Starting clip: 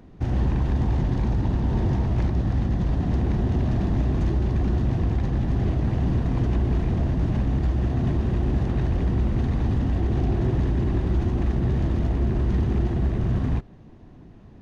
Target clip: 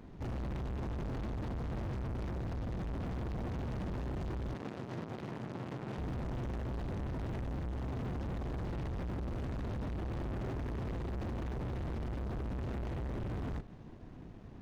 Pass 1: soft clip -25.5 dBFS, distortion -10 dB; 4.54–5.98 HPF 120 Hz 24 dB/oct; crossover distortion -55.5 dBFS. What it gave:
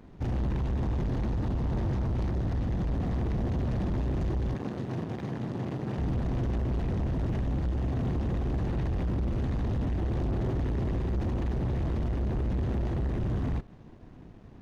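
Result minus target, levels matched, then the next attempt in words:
soft clip: distortion -5 dB
soft clip -35.5 dBFS, distortion -5 dB; 4.54–5.98 HPF 120 Hz 24 dB/oct; crossover distortion -55.5 dBFS

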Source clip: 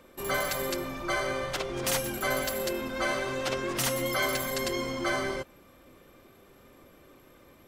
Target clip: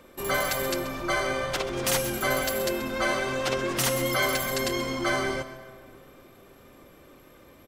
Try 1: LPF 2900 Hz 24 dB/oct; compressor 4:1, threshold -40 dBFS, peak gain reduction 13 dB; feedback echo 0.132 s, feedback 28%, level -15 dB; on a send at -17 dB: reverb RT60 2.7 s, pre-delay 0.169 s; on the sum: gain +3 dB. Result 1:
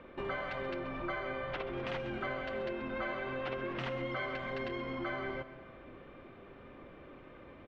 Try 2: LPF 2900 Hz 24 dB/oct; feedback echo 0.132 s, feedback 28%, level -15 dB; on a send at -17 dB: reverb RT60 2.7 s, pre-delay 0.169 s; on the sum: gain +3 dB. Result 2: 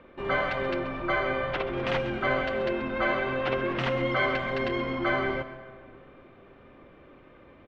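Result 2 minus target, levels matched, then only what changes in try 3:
4000 Hz band -5.5 dB
remove: LPF 2900 Hz 24 dB/oct

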